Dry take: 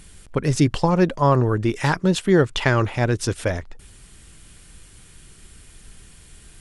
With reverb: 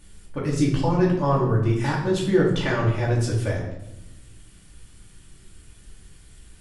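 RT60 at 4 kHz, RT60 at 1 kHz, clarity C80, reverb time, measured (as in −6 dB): 0.60 s, 0.80 s, 7.5 dB, 0.90 s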